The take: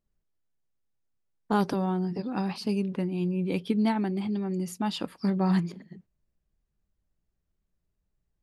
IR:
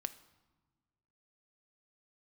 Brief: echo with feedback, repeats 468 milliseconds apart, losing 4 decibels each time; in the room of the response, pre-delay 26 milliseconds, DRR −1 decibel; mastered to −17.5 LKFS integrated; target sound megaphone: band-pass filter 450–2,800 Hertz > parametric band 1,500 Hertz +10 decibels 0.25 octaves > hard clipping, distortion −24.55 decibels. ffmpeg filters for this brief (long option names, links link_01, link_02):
-filter_complex "[0:a]aecho=1:1:468|936|1404|1872|2340|2808|3276|3744|4212:0.631|0.398|0.25|0.158|0.0994|0.0626|0.0394|0.0249|0.0157,asplit=2[link_01][link_02];[1:a]atrim=start_sample=2205,adelay=26[link_03];[link_02][link_03]afir=irnorm=-1:irlink=0,volume=2.5dB[link_04];[link_01][link_04]amix=inputs=2:normalize=0,highpass=450,lowpass=2800,equalizer=frequency=1500:width_type=o:width=0.25:gain=10,asoftclip=type=hard:threshold=-17dB,volume=13.5dB"